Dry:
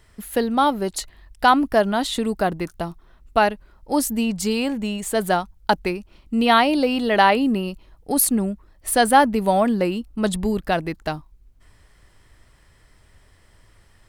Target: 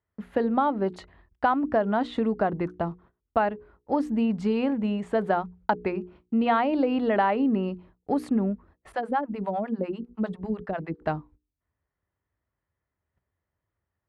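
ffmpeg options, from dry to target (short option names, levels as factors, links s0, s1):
-filter_complex "[0:a]highpass=f=58:w=0.5412,highpass=f=58:w=1.3066,agate=range=0.0562:threshold=0.00316:ratio=16:detection=peak,lowpass=1600,bandreject=f=60:t=h:w=6,bandreject=f=120:t=h:w=6,bandreject=f=180:t=h:w=6,bandreject=f=240:t=h:w=6,bandreject=f=300:t=h:w=6,bandreject=f=360:t=h:w=6,bandreject=f=420:t=h:w=6,bandreject=f=480:t=h:w=6,acompressor=threshold=0.1:ratio=4,asettb=1/sr,asplit=3[s0][s1][s2];[s0]atrim=end=8.924[s3];[s1]atrim=start=8.92:end=11.02,asetpts=PTS-STARTPTS,afade=t=in:d=0.004:c=qsin,afade=t=out:st=2.096:d=0.004:c=qsin,acrossover=split=580[s4][s5];[s4]aeval=exprs='val(0)*(1-1/2+1/2*cos(2*PI*10*n/s))':c=same[s6];[s5]aeval=exprs='val(0)*(1-1/2-1/2*cos(2*PI*10*n/s))':c=same[s7];[s6][s7]amix=inputs=2:normalize=0[s8];[s2]atrim=start=11.016[s9];[s3][s8]acrossfade=d=0.004:c1=hsin:c2=qsin[s10];[s10][s9]acrossfade=d=0.004:c1=qsin:c2=hsin"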